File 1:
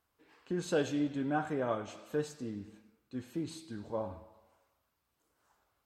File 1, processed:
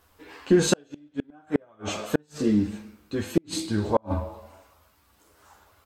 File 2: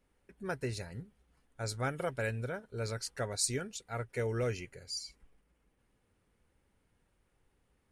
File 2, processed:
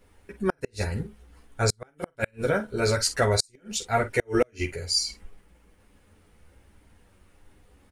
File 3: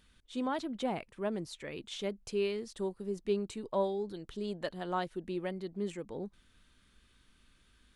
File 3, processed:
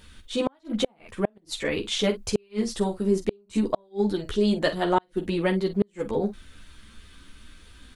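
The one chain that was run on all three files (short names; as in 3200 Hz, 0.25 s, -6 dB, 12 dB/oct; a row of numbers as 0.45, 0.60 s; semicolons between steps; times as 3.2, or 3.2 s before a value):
chorus voices 6, 0.51 Hz, delay 12 ms, depth 2.4 ms; doubler 47 ms -12 dB; flipped gate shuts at -28 dBFS, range -40 dB; match loudness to -27 LUFS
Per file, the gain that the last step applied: +21.0, +17.5, +18.0 dB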